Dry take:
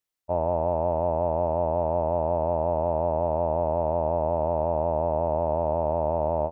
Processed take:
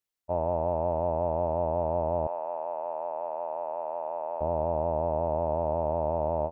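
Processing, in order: 2.27–4.41 HPF 790 Hz 12 dB/oct; gain -3 dB

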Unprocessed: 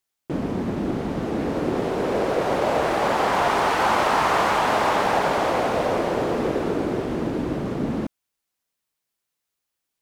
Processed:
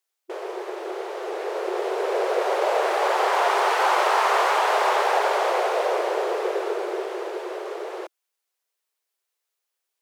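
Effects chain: brick-wall FIR high-pass 350 Hz

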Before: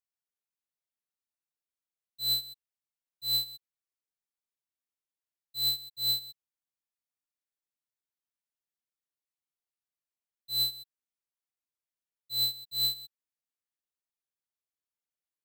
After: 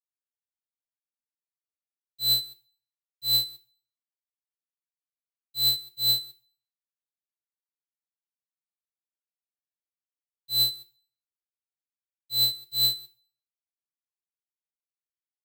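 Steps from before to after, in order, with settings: G.711 law mismatch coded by A; on a send: reverb RT60 0.50 s, pre-delay 3 ms, DRR 14 dB; on the sum: gain +7 dB

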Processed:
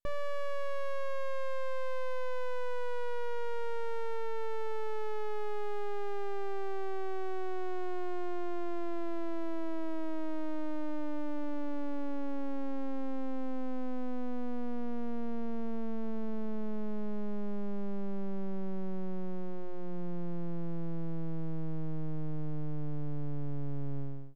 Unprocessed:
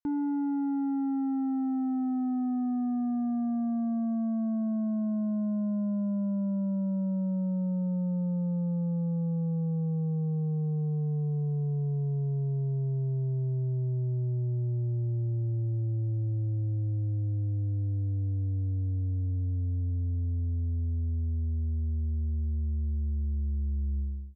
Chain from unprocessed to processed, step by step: full-wave rectifier; notches 60/120/180 Hz

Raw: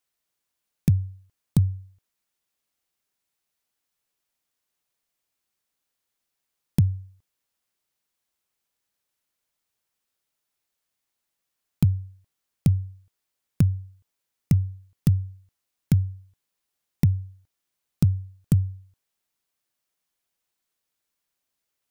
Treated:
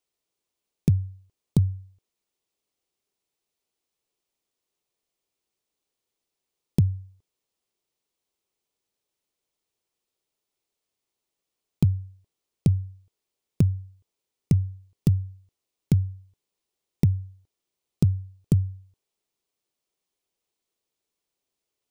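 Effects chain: fifteen-band EQ 400 Hz +8 dB, 1600 Hz -7 dB, 16000 Hz -9 dB; gain -1 dB

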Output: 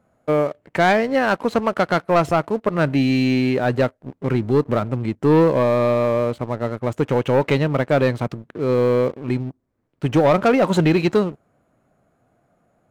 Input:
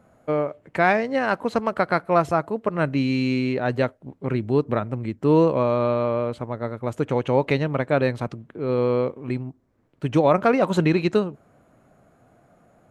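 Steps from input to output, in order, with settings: sample leveller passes 2; gain -2.5 dB

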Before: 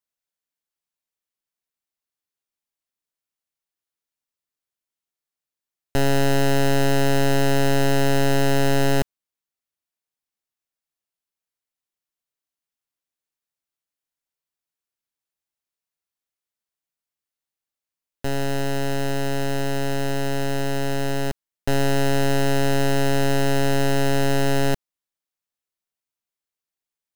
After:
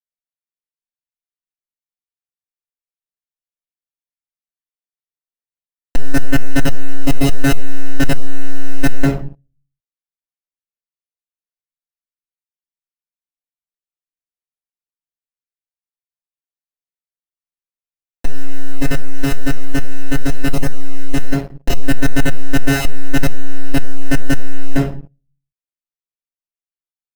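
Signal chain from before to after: random spectral dropouts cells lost 20%; in parallel at -1 dB: bit-crush 6-bit; on the sum: shoebox room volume 31 m³, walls mixed, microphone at 1.7 m; sample leveller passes 3; gain -16.5 dB

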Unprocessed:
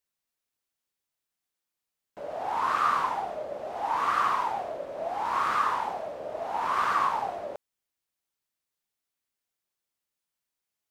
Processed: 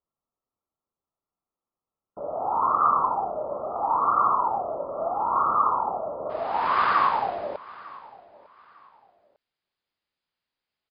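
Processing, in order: brick-wall FIR low-pass 1400 Hz, from 6.29 s 5100 Hz; feedback echo 0.901 s, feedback 28%, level -21 dB; gain +4.5 dB

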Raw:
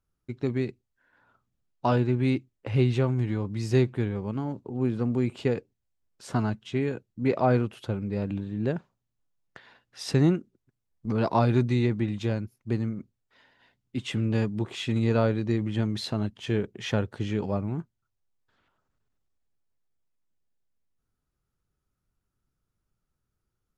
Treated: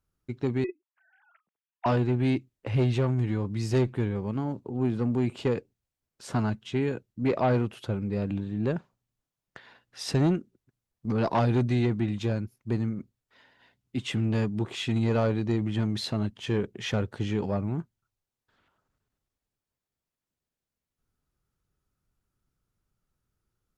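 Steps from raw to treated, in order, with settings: 0.64–1.86 sine-wave speech; added harmonics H 5 -16 dB, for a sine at -9.5 dBFS; gain -4 dB

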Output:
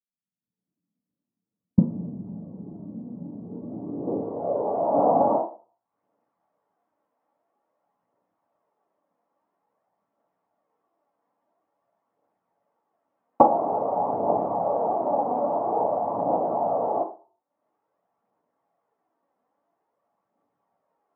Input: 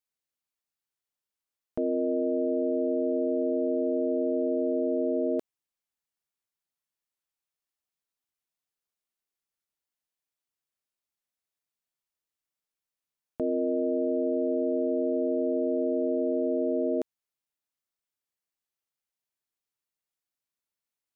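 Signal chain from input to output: recorder AGC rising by 50 dB/s; 4.93–5.35 tilt -4 dB/oct; noise vocoder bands 4; phaser 0.49 Hz, delay 4.2 ms, feedback 40%; low-pass sweep 190 Hz -> 750 Hz, 3.28–4.89; reverb RT60 0.45 s, pre-delay 3 ms, DRR -4 dB; dynamic EQ 800 Hz, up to +6 dB, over -20 dBFS, Q 0.72; gain -18 dB

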